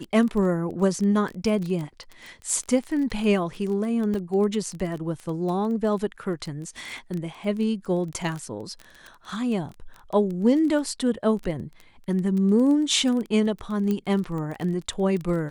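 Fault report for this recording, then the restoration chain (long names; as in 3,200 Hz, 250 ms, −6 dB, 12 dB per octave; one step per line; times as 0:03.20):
surface crackle 21 per second −29 dBFS
0:04.14: drop-out 2.6 ms
0:13.91: click −15 dBFS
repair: click removal
repair the gap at 0:04.14, 2.6 ms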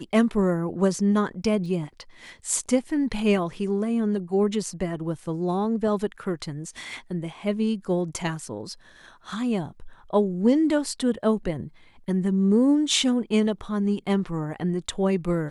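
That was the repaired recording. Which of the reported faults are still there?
0:13.91: click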